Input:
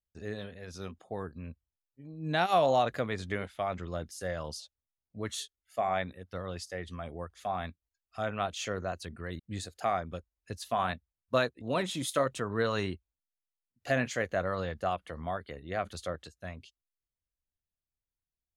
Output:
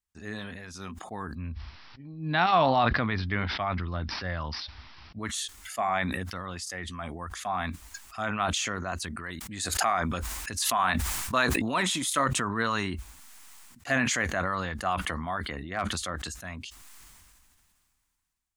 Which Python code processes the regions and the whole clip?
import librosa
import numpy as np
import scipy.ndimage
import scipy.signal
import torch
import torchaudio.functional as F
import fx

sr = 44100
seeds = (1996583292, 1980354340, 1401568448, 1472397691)

y = fx.chain(x, sr, fx.peak_eq(hz=80.0, db=9.0, octaves=1.8),
    fx.resample_bad(factor=4, down='none', up='filtered'), at=(1.35, 5.19))
y = fx.chain(y, sr, fx.low_shelf(hz=300.0, db=-6.0),
    fx.pre_swell(db_per_s=39.0), at=(9.17, 12.14))
y = fx.chain(y, sr, fx.high_shelf(hz=6200.0, db=-8.5),
    fx.clip_hard(threshold_db=-23.5), at=(15.48, 15.94))
y = fx.graphic_eq(y, sr, hz=(125, 250, 500, 1000, 2000, 8000), db=(-3, 5, -9, 8, 4, 7))
y = fx.sustainer(y, sr, db_per_s=25.0)